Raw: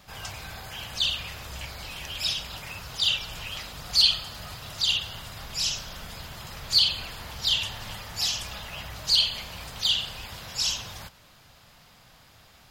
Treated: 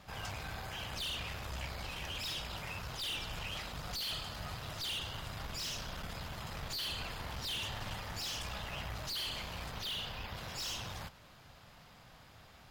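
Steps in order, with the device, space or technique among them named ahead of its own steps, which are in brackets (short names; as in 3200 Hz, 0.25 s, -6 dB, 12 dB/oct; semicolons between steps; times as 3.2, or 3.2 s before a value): tube preamp driven hard (tube stage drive 34 dB, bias 0.55; high shelf 3200 Hz -8 dB); 9.68–10.36 bell 8500 Hz -4 dB -> -12.5 dB 0.8 oct; gain +1.5 dB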